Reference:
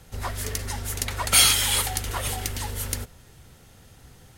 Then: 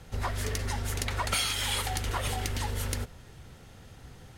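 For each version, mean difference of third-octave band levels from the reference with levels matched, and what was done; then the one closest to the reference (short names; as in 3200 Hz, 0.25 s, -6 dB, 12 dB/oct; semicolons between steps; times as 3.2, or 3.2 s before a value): 5.5 dB: high shelf 7300 Hz -11.5 dB; compressor 6:1, threshold -28 dBFS, peak gain reduction 11.5 dB; gain +1.5 dB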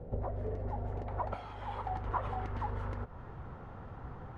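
15.5 dB: high shelf 11000 Hz -9.5 dB; compressor 16:1, threshold -37 dBFS, peak gain reduction 23.5 dB; low-pass sweep 550 Hz -> 1100 Hz, 0.04–2.35; gain +4.5 dB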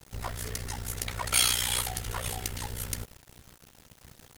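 3.0 dB: in parallel at -3 dB: soft clip -20.5 dBFS, distortion -7 dB; on the sum: bit-crush 7-bit; AM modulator 61 Hz, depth 70%; gain -6 dB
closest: third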